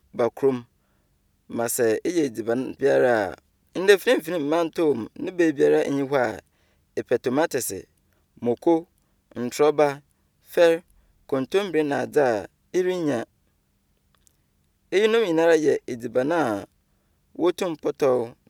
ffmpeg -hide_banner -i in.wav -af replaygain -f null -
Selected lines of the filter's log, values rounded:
track_gain = +2.5 dB
track_peak = 0.571